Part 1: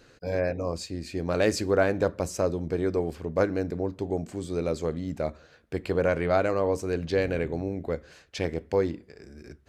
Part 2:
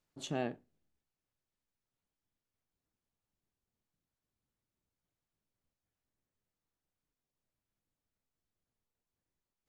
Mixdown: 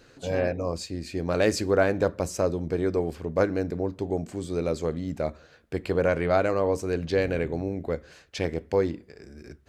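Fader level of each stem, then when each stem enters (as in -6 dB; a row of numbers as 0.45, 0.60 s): +1.0, 0.0 dB; 0.00, 0.00 s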